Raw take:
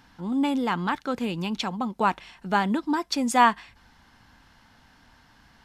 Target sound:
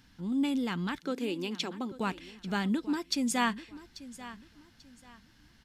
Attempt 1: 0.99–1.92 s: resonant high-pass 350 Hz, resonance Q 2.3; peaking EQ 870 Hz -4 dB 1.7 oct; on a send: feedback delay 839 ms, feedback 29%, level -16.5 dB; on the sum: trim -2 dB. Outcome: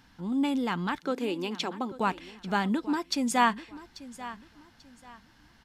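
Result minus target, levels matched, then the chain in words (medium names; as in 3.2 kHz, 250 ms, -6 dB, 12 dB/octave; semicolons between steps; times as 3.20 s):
1 kHz band +4.5 dB
0.99–1.92 s: resonant high-pass 350 Hz, resonance Q 2.3; peaking EQ 870 Hz -12.5 dB 1.7 oct; on a send: feedback delay 839 ms, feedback 29%, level -16.5 dB; on the sum: trim -2 dB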